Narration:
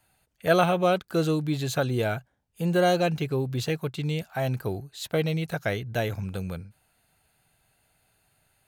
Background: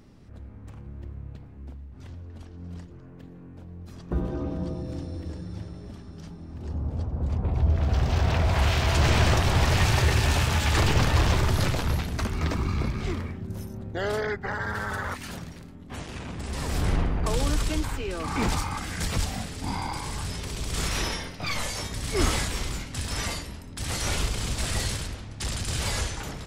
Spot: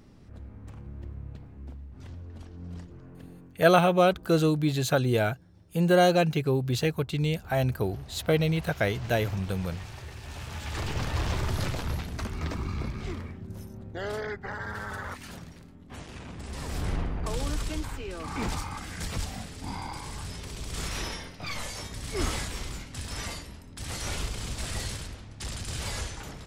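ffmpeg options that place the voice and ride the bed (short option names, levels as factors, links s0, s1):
-filter_complex "[0:a]adelay=3150,volume=1.19[s0];[1:a]volume=5.01,afade=t=out:st=3.31:d=0.35:silence=0.105925,afade=t=in:st=10.21:d=1.33:silence=0.177828[s1];[s0][s1]amix=inputs=2:normalize=0"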